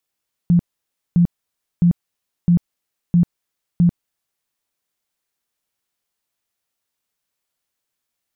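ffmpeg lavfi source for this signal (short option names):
-f lavfi -i "aevalsrc='0.335*sin(2*PI*173*mod(t,0.66))*lt(mod(t,0.66),16/173)':d=3.96:s=44100"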